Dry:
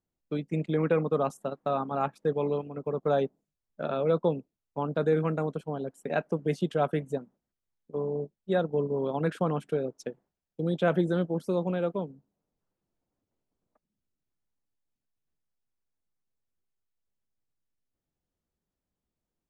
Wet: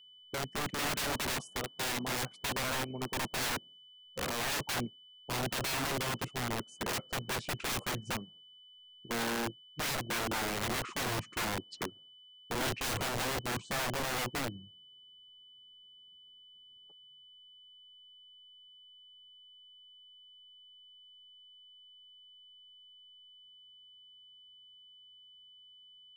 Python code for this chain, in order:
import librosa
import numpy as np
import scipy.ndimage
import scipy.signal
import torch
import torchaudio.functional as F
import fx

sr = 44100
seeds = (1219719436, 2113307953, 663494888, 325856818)

y = fx.speed_glide(x, sr, from_pct=94, to_pct=55)
y = y + 10.0 ** (-55.0 / 20.0) * np.sin(2.0 * np.pi * 3000.0 * np.arange(len(y)) / sr)
y = (np.mod(10.0 ** (29.0 / 20.0) * y + 1.0, 2.0) - 1.0) / 10.0 ** (29.0 / 20.0)